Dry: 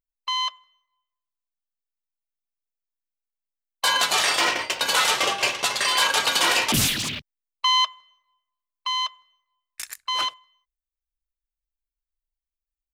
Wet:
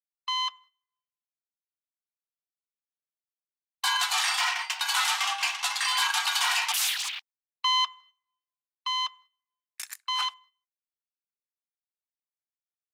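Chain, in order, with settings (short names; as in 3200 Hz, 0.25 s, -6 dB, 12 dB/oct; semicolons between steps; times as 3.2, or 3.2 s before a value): steep high-pass 730 Hz 96 dB/oct; gate -50 dBFS, range -12 dB; in parallel at -3 dB: limiter -15.5 dBFS, peak gain reduction 7.5 dB; on the sum: gain -8 dB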